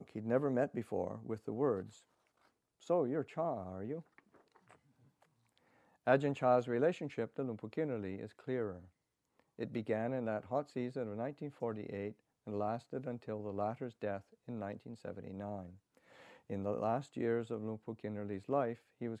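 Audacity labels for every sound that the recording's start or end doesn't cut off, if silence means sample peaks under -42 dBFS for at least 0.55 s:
2.900000	3.990000	sound
6.070000	8.770000	sound
9.590000	15.650000	sound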